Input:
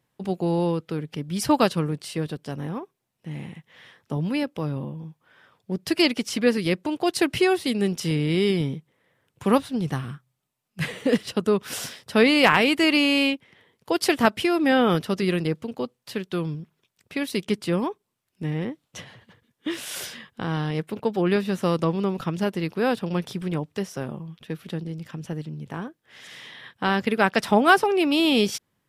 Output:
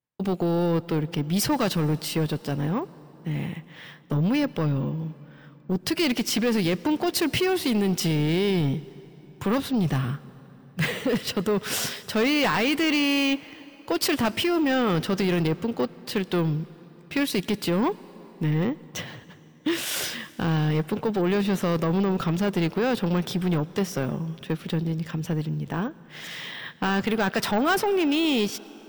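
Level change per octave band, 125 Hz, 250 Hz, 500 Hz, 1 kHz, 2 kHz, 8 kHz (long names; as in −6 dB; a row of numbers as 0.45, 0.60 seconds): +3.0, 0.0, −2.0, −3.5, −3.0, +2.5 decibels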